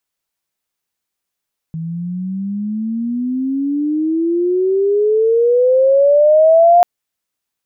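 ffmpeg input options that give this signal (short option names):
-f lavfi -i "aevalsrc='pow(10,(-21+16*t/5.09)/20)*sin(2*PI*160*5.09/log(710/160)*(exp(log(710/160)*t/5.09)-1))':d=5.09:s=44100"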